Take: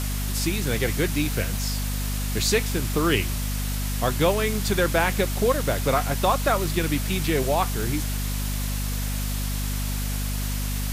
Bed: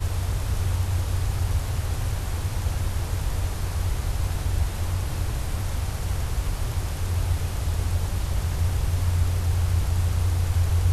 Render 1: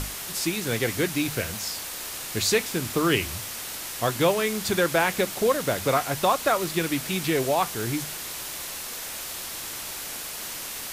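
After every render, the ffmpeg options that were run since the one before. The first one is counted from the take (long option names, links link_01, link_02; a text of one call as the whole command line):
ffmpeg -i in.wav -af "bandreject=frequency=50:width_type=h:width=6,bandreject=frequency=100:width_type=h:width=6,bandreject=frequency=150:width_type=h:width=6,bandreject=frequency=200:width_type=h:width=6,bandreject=frequency=250:width_type=h:width=6" out.wav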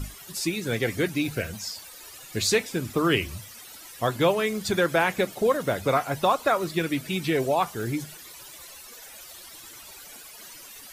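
ffmpeg -i in.wav -af "afftdn=noise_reduction=15:noise_floor=-35" out.wav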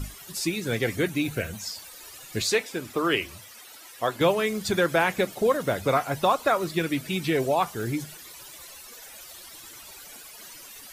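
ffmpeg -i in.wav -filter_complex "[0:a]asettb=1/sr,asplit=3[link_01][link_02][link_03];[link_01]atrim=end=0.964[link_04];[link_02]atrim=start=0.96:end=1.66,asetpts=PTS-STARTPTS,afade=type=in:duration=0.004:curve=qsin,afade=type=out:start_time=0.696:duration=0.004:curve=qsin,equalizer=frequency=5000:width_type=o:width=0.23:gain=-8[link_05];[link_03]atrim=start=1.656[link_06];[link_04][link_05]acrossfade=duration=0.004:curve1=hsin:curve2=qsin[link_07];[link_07][link_06]acrossfade=duration=0.004:curve1=qsin:curve2=hsin,asettb=1/sr,asplit=3[link_08][link_09][link_10];[link_08]atrim=end=2.424[link_11];[link_09]atrim=start=2.42:end=4.21,asetpts=PTS-STARTPTS,afade=type=in:duration=0.004:curve=qsin,afade=type=out:start_time=1.786:duration=0.004:curve=qsin,bass=frequency=250:gain=-11,treble=frequency=4000:gain=-3[link_12];[link_10]atrim=start=4.206[link_13];[link_11][link_12]acrossfade=duration=0.004:curve1=hsin:curve2=qsin[link_14];[link_14][link_13]acrossfade=duration=0.004:curve1=qsin:curve2=hsin" out.wav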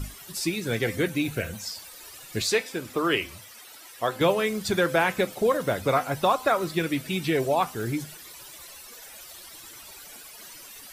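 ffmpeg -i in.wav -af "bandreject=frequency=6700:width=28,bandreject=frequency=257.3:width_type=h:width=4,bandreject=frequency=514.6:width_type=h:width=4,bandreject=frequency=771.9:width_type=h:width=4,bandreject=frequency=1029.2:width_type=h:width=4,bandreject=frequency=1286.5:width_type=h:width=4,bandreject=frequency=1543.8:width_type=h:width=4,bandreject=frequency=1801.1:width_type=h:width=4,bandreject=frequency=2058.4:width_type=h:width=4,bandreject=frequency=2315.7:width_type=h:width=4,bandreject=frequency=2573:width_type=h:width=4,bandreject=frequency=2830.3:width_type=h:width=4,bandreject=frequency=3087.6:width_type=h:width=4,bandreject=frequency=3344.9:width_type=h:width=4,bandreject=frequency=3602.2:width_type=h:width=4,bandreject=frequency=3859.5:width_type=h:width=4,bandreject=frequency=4116.8:width_type=h:width=4,bandreject=frequency=4374.1:width_type=h:width=4,bandreject=frequency=4631.4:width_type=h:width=4,bandreject=frequency=4888.7:width_type=h:width=4,bandreject=frequency=5146:width_type=h:width=4,bandreject=frequency=5403.3:width_type=h:width=4,bandreject=frequency=5660.6:width_type=h:width=4,bandreject=frequency=5917.9:width_type=h:width=4,bandreject=frequency=6175.2:width_type=h:width=4,bandreject=frequency=6432.5:width_type=h:width=4,bandreject=frequency=6689.8:width_type=h:width=4,bandreject=frequency=6947.1:width_type=h:width=4" out.wav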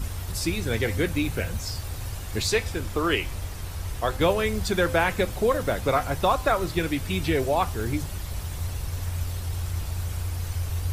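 ffmpeg -i in.wav -i bed.wav -filter_complex "[1:a]volume=-7dB[link_01];[0:a][link_01]amix=inputs=2:normalize=0" out.wav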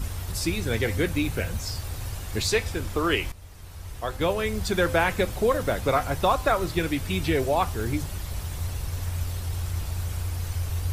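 ffmpeg -i in.wav -filter_complex "[0:a]asplit=2[link_01][link_02];[link_01]atrim=end=3.32,asetpts=PTS-STARTPTS,afade=type=out:start_time=3.316:duration=0.004:curve=hsin:silence=0.177828[link_03];[link_02]atrim=start=3.32,asetpts=PTS-STARTPTS,afade=type=in:duration=1.51:silence=0.177828[link_04];[link_03][link_04]concat=n=2:v=0:a=1" out.wav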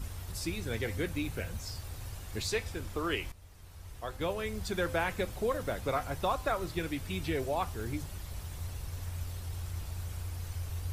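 ffmpeg -i in.wav -af "volume=-9dB" out.wav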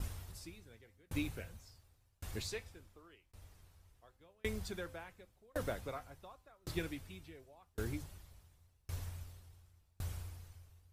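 ffmpeg -i in.wav -af "aeval=exprs='val(0)*pow(10,-37*if(lt(mod(0.9*n/s,1),2*abs(0.9)/1000),1-mod(0.9*n/s,1)/(2*abs(0.9)/1000),(mod(0.9*n/s,1)-2*abs(0.9)/1000)/(1-2*abs(0.9)/1000))/20)':channel_layout=same" out.wav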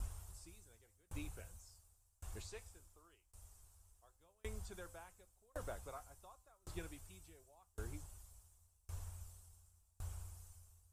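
ffmpeg -i in.wav -filter_complex "[0:a]equalizer=frequency=125:width_type=o:width=1:gain=-10,equalizer=frequency=250:width_type=o:width=1:gain=-11,equalizer=frequency=500:width_type=o:width=1:gain=-6,equalizer=frequency=2000:width_type=o:width=1:gain=-11,equalizer=frequency=4000:width_type=o:width=1:gain=-8,equalizer=frequency=8000:width_type=o:width=1:gain=11,acrossover=split=3700[link_01][link_02];[link_02]acompressor=threshold=-59dB:ratio=4:attack=1:release=60[link_03];[link_01][link_03]amix=inputs=2:normalize=0" out.wav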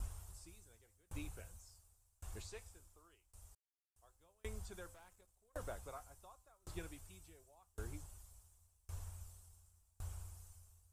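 ffmpeg -i in.wav -filter_complex "[0:a]asettb=1/sr,asplit=3[link_01][link_02][link_03];[link_01]atrim=end=4.944[link_04];[link_02]atrim=start=4.94:end=5.53,asetpts=PTS-STARTPTS,afade=type=in:duration=0.004:curve=qsin,afade=type=out:start_time=0.586:duration=0.004:curve=qsin,aeval=exprs='(tanh(794*val(0)+0.65)-tanh(0.65))/794':channel_layout=same[link_05];[link_03]atrim=start=5.526[link_06];[link_04][link_05]acrossfade=duration=0.004:curve1=hsin:curve2=qsin[link_07];[link_07][link_06]acrossfade=duration=0.004:curve1=qsin:curve2=hsin,asplit=3[link_08][link_09][link_10];[link_08]atrim=end=3.55,asetpts=PTS-STARTPTS,afade=type=out:start_time=3.546:duration=0.004:curve=hsin[link_11];[link_09]atrim=start=3.55:end=3.96,asetpts=PTS-STARTPTS,volume=0[link_12];[link_10]atrim=start=3.96,asetpts=PTS-STARTPTS,afade=type=in:duration=0.004:curve=hsin[link_13];[link_11][link_12][link_13]concat=n=3:v=0:a=1" out.wav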